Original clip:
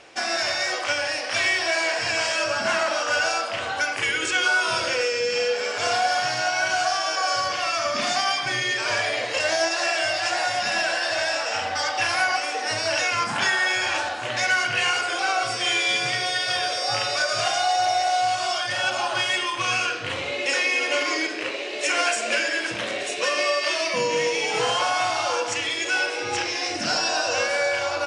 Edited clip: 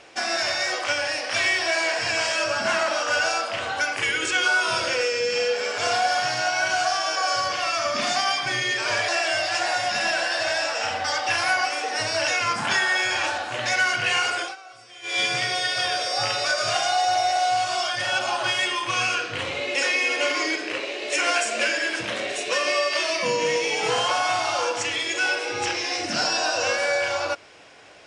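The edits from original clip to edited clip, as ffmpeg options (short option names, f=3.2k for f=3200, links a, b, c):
-filter_complex "[0:a]asplit=4[a][b][c][d];[a]atrim=end=9.082[e];[b]atrim=start=9.788:end=15.27,asetpts=PTS-STARTPTS,afade=t=out:st=5.302:d=0.18:silence=0.0891251[f];[c]atrim=start=15.27:end=15.73,asetpts=PTS-STARTPTS,volume=-21dB[g];[d]atrim=start=15.73,asetpts=PTS-STARTPTS,afade=t=in:d=0.18:silence=0.0891251[h];[f][g][h]concat=n=3:v=0:a=1[i];[e][i]acrossfade=d=0.004:c1=hsin:c2=hsin"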